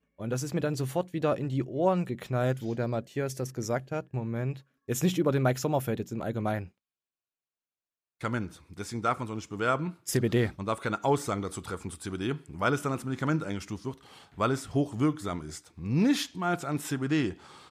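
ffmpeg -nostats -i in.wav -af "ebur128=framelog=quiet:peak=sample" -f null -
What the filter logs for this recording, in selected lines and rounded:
Integrated loudness:
  I:         -30.5 LUFS
  Threshold: -40.7 LUFS
Loudness range:
  LRA:         4.1 LU
  Threshold: -51.2 LUFS
  LRA low:   -34.3 LUFS
  LRA high:  -30.1 LUFS
Sample peak:
  Peak:      -12.7 dBFS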